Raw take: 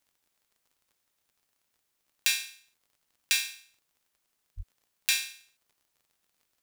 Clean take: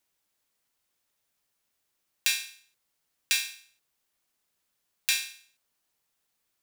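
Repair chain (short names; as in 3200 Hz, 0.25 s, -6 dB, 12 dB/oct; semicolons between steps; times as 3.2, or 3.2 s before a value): de-click; de-plosive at 4.56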